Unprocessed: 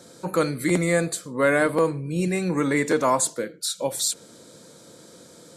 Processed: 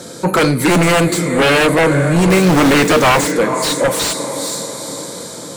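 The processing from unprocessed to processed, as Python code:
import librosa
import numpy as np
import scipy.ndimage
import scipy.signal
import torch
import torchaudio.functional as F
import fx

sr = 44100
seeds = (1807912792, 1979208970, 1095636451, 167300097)

p1 = x + fx.echo_diffused(x, sr, ms=456, feedback_pct=53, wet_db=-13.0, dry=0)
p2 = fx.fold_sine(p1, sr, drive_db=12, ceiling_db=-8.0)
p3 = fx.quant_companded(p2, sr, bits=4, at=(2.3, 3.32))
y = fx.slew_limit(p3, sr, full_power_hz=770.0)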